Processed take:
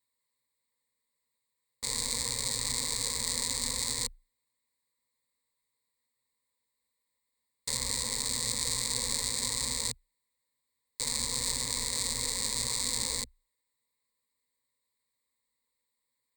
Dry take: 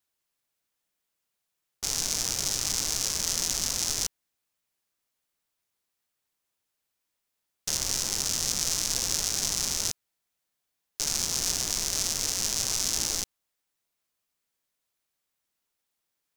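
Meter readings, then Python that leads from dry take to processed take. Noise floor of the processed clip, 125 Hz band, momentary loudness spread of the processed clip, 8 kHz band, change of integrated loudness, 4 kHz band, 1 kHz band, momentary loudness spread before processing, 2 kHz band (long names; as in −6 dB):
−84 dBFS, −1.5 dB, 6 LU, −4.5 dB, −3.5 dB, −3.0 dB, −1.5 dB, 6 LU, −1.5 dB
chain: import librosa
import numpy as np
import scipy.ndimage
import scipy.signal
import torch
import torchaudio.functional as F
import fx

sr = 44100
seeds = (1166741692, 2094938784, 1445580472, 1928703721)

y = fx.ripple_eq(x, sr, per_octave=0.98, db=18)
y = y * librosa.db_to_amplitude(-5.5)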